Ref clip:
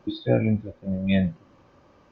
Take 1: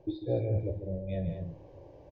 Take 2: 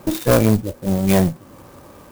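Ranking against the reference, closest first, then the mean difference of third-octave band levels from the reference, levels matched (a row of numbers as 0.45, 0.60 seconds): 1, 2; 6.0, 9.5 decibels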